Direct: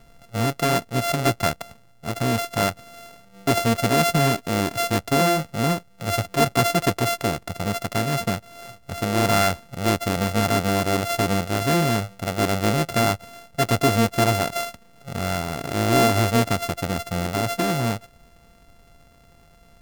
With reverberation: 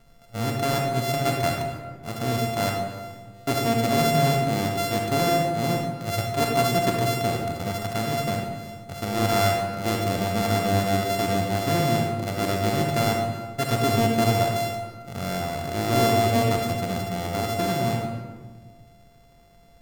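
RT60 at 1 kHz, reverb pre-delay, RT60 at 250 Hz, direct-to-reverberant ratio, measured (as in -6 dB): 1.4 s, 31 ms, 1.9 s, 1.0 dB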